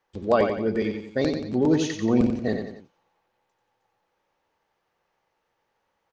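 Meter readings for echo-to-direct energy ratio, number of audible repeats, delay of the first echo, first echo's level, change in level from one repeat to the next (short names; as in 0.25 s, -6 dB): -5.0 dB, 3, 90 ms, -6.0 dB, -7.0 dB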